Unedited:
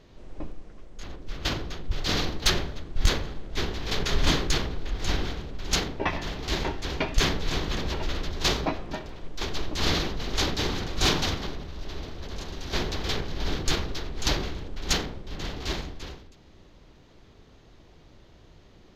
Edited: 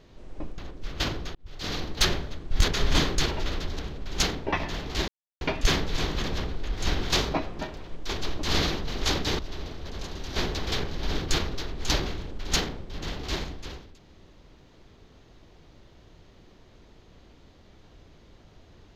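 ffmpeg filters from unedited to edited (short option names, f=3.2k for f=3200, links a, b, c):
-filter_complex "[0:a]asplit=11[a][b][c][d][e][f][g][h][i][j][k];[a]atrim=end=0.582[l];[b]atrim=start=1.028:end=1.8,asetpts=PTS-STARTPTS,afade=t=out:st=0.768:d=0.004:c=hsin[m];[c]atrim=start=1.8:end=3.132,asetpts=PTS-STARTPTS,afade=t=in:d=0.69[n];[d]atrim=start=3.998:end=4.602[o];[e]atrim=start=7.908:end=8.422[p];[f]atrim=start=5.318:end=6.61,asetpts=PTS-STARTPTS,afade=t=out:st=1.288:d=0.004:c=hsin[q];[g]atrim=start=6.61:end=6.94,asetpts=PTS-STARTPTS,volume=0[r];[h]atrim=start=6.94:end=7.912,asetpts=PTS-STARTPTS,afade=t=in:d=0.004:c=hsin[s];[i]atrim=start=4.598:end=5.322[t];[j]atrim=start=8.418:end=10.712[u];[k]atrim=start=11.758[v];[m][n]concat=n=2:v=0:a=1[w];[l][w]acrossfade=d=0.004:c1=hsin:c2=hsin[x];[x][o]acrossfade=d=0.004:c1=hsin:c2=hsin[y];[y][p]acrossfade=d=0.004:c1=hsin:c2=hsin[z];[q][r][s]concat=n=3:v=0:a=1[aa];[z][aa]acrossfade=d=0.004:c1=hsin:c2=hsin[ab];[ab][t]acrossfade=d=0.004:c1=hsin:c2=hsin[ac];[ac][u]acrossfade=d=0.004:c1=hsin:c2=hsin[ad];[ad][v]acrossfade=d=0.004:c1=hsin:c2=hsin"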